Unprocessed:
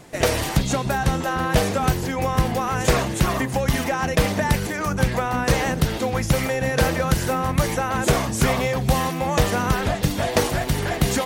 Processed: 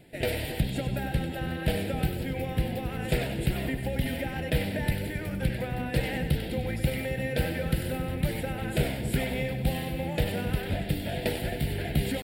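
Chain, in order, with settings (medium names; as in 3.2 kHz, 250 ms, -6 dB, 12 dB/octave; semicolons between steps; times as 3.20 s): static phaser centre 2.7 kHz, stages 4; tempo 0.92×; two-band feedback delay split 550 Hz, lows 266 ms, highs 96 ms, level -8.5 dB; trim -7 dB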